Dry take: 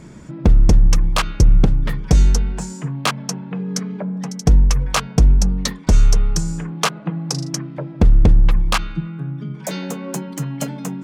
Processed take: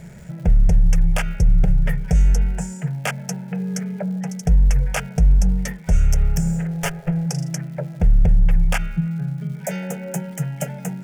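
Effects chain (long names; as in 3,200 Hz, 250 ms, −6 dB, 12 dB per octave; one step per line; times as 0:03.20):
0:05.95–0:07.26: lower of the sound and its delayed copy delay 7.2 ms
parametric band 170 Hz +9 dB 0.23 octaves
brickwall limiter −9 dBFS, peak gain reduction 8 dB
phaser with its sweep stopped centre 1,100 Hz, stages 6
surface crackle 310 per second −43 dBFS
level +1.5 dB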